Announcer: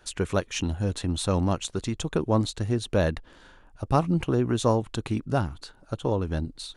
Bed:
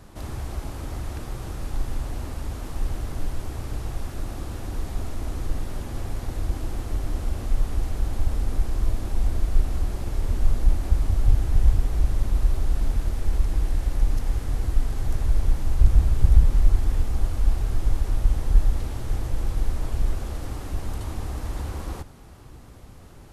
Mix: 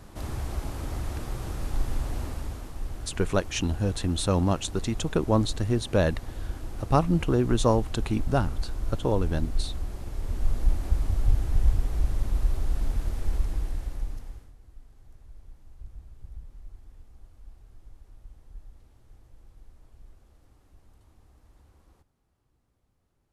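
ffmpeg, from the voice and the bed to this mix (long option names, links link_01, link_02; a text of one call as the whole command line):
ffmpeg -i stem1.wav -i stem2.wav -filter_complex "[0:a]adelay=3000,volume=0.5dB[link_01];[1:a]volume=3dB,afade=type=out:start_time=2.22:duration=0.51:silence=0.446684,afade=type=in:start_time=10.14:duration=0.52:silence=0.668344,afade=type=out:start_time=13.31:duration=1.22:silence=0.0668344[link_02];[link_01][link_02]amix=inputs=2:normalize=0" out.wav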